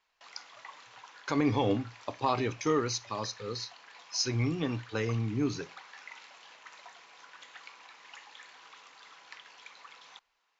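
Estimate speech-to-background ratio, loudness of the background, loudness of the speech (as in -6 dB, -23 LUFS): 18.5 dB, -50.5 LUFS, -32.0 LUFS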